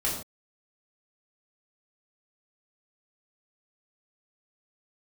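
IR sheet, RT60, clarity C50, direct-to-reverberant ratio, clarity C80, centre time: non-exponential decay, 4.5 dB, −6.0 dB, 7.0 dB, 38 ms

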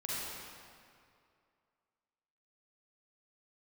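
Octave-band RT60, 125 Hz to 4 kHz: 2.3, 2.3, 2.4, 2.3, 2.0, 1.7 seconds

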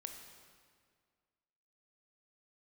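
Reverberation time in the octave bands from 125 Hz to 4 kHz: 2.0, 2.1, 2.0, 1.9, 1.7, 1.5 seconds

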